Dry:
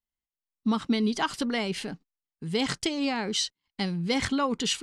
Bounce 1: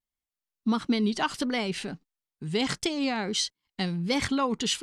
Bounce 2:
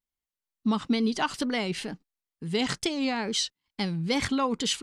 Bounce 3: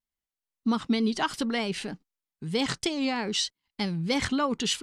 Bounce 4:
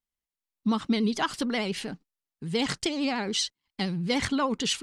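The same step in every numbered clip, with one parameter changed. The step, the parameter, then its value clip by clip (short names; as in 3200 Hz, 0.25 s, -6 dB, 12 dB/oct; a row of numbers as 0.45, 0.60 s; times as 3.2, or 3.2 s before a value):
vibrato, rate: 1.5, 2.2, 3.2, 13 Hz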